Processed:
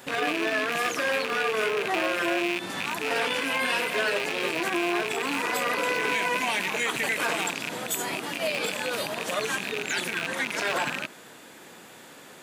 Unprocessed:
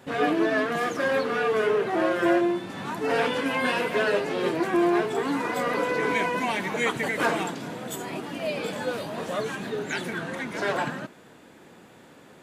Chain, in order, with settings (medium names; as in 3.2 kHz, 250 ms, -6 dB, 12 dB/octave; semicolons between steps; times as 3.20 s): rattle on loud lows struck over -36 dBFS, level -19 dBFS; tilt EQ +2.5 dB/octave; peak limiter -21 dBFS, peak gain reduction 10.5 dB; trim +4 dB